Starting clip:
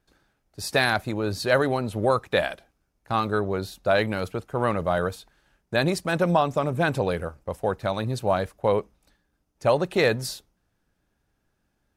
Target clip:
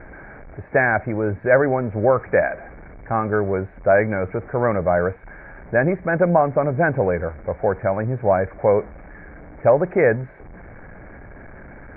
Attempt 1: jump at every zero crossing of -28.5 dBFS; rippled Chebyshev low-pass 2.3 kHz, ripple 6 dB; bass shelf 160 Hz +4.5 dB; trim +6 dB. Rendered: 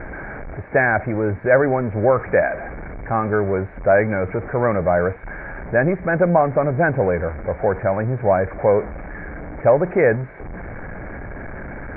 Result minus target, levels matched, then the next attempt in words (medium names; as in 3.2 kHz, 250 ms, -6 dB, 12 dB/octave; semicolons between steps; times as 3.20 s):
jump at every zero crossing: distortion +8 dB
jump at every zero crossing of -37 dBFS; rippled Chebyshev low-pass 2.3 kHz, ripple 6 dB; bass shelf 160 Hz +4.5 dB; trim +6 dB